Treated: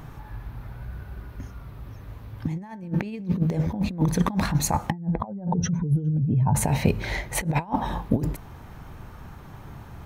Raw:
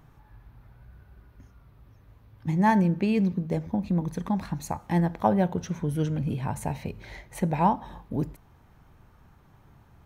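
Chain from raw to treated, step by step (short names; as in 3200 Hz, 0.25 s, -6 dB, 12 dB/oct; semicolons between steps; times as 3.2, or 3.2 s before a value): 4.9–6.55 spectral contrast raised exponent 1.8; negative-ratio compressor -31 dBFS, ratio -0.5; gain +8 dB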